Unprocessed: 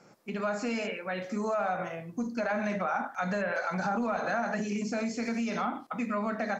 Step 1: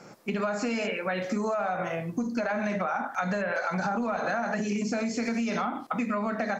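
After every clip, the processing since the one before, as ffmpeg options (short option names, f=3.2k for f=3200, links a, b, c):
-af "acompressor=threshold=-35dB:ratio=6,volume=9dB"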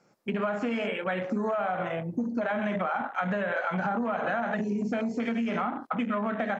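-af "afwtdn=0.0141"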